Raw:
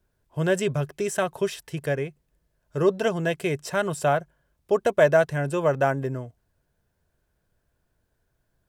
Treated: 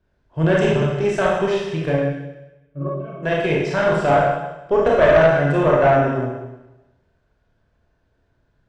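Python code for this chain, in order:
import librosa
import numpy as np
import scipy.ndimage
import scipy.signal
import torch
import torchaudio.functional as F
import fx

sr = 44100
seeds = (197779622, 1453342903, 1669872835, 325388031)

y = fx.octave_resonator(x, sr, note='C#', decay_s=0.16, at=(1.91, 3.22), fade=0.02)
y = fx.rev_schroeder(y, sr, rt60_s=1.0, comb_ms=25, drr_db=-4.5)
y = fx.tube_stage(y, sr, drive_db=11.0, bias=0.45)
y = fx.air_absorb(y, sr, metres=160.0)
y = y * librosa.db_to_amplitude(5.0)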